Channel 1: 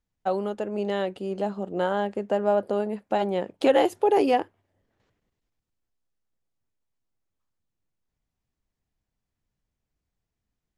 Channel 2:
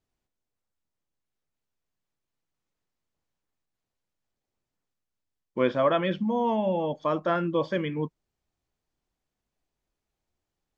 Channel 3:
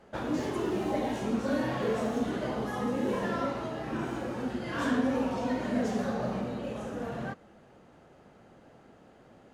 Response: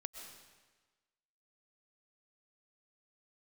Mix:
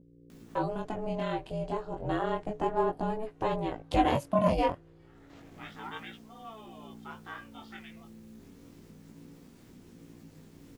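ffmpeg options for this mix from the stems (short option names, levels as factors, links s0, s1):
-filter_complex "[0:a]acompressor=mode=upward:threshold=0.0562:ratio=2.5,adelay=300,volume=1.06[s0];[1:a]highpass=1300,aeval=exprs='val(0)+0.00708*(sin(2*PI*60*n/s)+sin(2*PI*2*60*n/s)/2+sin(2*PI*3*60*n/s)/3+sin(2*PI*4*60*n/s)/4+sin(2*PI*5*60*n/s)/5)':c=same,volume=0.596[s1];[2:a]equalizer=f=300:t=o:w=0.94:g=-14,acompressor=threshold=0.00794:ratio=5,adelay=350,volume=0.15[s2];[s0][s1][s2]amix=inputs=3:normalize=0,aeval=exprs='val(0)*sin(2*PI*220*n/s)':c=same,flanger=delay=16.5:depth=6.8:speed=0.31"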